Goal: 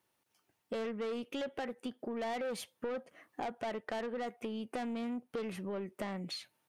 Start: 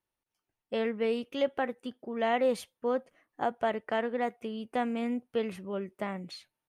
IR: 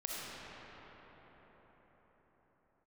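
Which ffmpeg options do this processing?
-af "highpass=110,asoftclip=type=tanh:threshold=-31dB,acompressor=threshold=-49dB:ratio=4,volume=10dB"

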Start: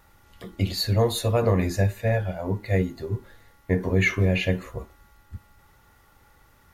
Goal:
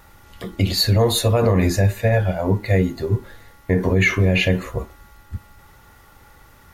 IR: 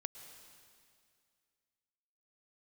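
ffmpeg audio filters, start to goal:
-af "alimiter=level_in=15.5dB:limit=-1dB:release=50:level=0:latency=1,volume=-7dB"

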